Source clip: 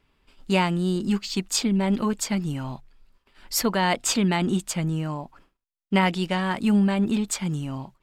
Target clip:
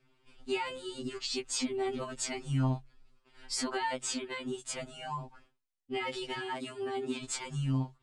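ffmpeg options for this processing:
-filter_complex "[0:a]asettb=1/sr,asplit=3[a][b][c];[a]atrim=end=3.954[d];[b]atrim=start=3.95:end=4.75,asetpts=PTS-STARTPTS,afade=t=in:d=0.004:c=qsin,afade=t=out:st=0.796:d=0.004:c=qsin,acompressor=threshold=-28dB:ratio=6[e];[c]atrim=start=4.746[f];[d][e]acrossfade=d=0.004:c1=hsin:c2=qsin[g];[g][f]acrossfade=d=0.004:c1=qsin:c2=hsin,asettb=1/sr,asplit=3[h][i][j];[h]atrim=end=6.384[k];[i]atrim=start=6.38:end=7.24,asetpts=PTS-STARTPTS,afade=t=in:d=0.004:c=qsin,afade=t=out:st=0.856:d=0.004:c=qsin,highpass=190[l];[j]atrim=start=7.236[m];[k][l]acrossfade=d=0.004:c1=hsin:c2=qsin[n];[n][m]acrossfade=d=0.004:c1=qsin:c2=hsin,alimiter=limit=-20dB:level=0:latency=1:release=34,aresample=22050,aresample=44100,afftfilt=real='re*2.45*eq(mod(b,6),0)':imag='im*2.45*eq(mod(b,6),0)':win_size=2048:overlap=0.75,volume=-1dB"

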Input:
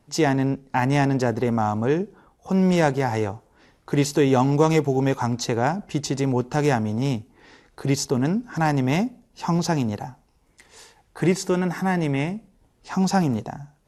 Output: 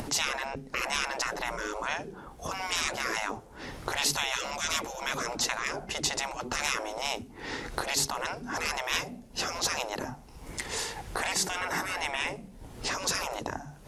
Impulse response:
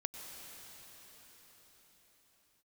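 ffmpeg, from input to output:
-af "acompressor=mode=upward:threshold=-29dB:ratio=2.5,afftfilt=real='re*lt(hypot(re,im),0.0891)':imag='im*lt(hypot(re,im),0.0891)':win_size=1024:overlap=0.75,volume=5.5dB"

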